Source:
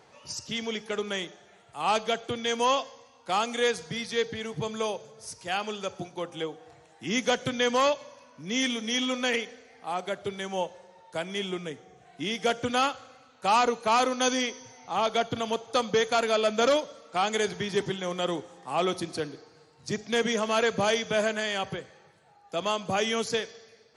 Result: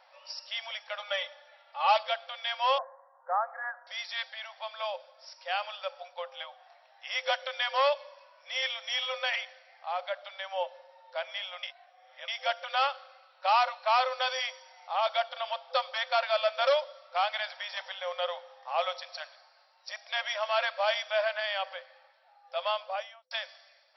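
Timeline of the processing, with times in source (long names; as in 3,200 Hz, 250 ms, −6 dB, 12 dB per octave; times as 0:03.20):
0:00.99–0:02.03: comb filter 3.5 ms, depth 86%
0:02.78–0:03.87: Butterworth low-pass 1,800 Hz 96 dB per octave
0:11.63–0:12.28: reverse
0:22.73–0:23.31: fade out and dull
whole clip: brick-wall band-pass 510–5,700 Hz; level −1.5 dB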